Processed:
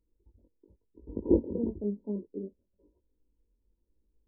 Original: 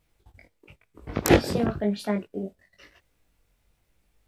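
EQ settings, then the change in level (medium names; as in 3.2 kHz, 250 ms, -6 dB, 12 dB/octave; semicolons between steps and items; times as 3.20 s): brick-wall FIR low-pass 1 kHz; peaking EQ 650 Hz -10.5 dB 0.36 oct; static phaser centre 320 Hz, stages 4; -3.0 dB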